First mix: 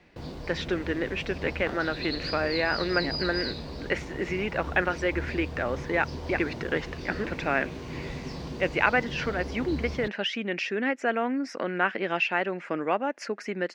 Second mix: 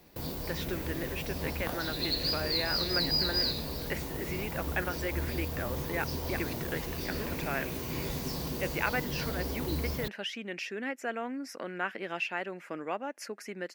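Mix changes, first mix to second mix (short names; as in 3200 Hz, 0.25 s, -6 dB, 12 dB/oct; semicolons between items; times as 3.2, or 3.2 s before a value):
speech -9.0 dB; master: remove air absorption 120 m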